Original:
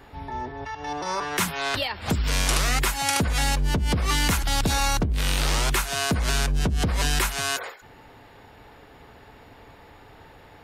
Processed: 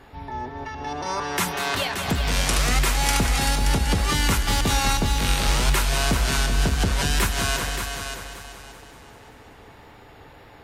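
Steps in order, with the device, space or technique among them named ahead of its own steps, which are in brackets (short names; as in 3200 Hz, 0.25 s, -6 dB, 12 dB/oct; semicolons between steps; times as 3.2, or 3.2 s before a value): multi-head tape echo (multi-head echo 0.192 s, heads all three, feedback 41%, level -9.5 dB; wow and flutter 24 cents)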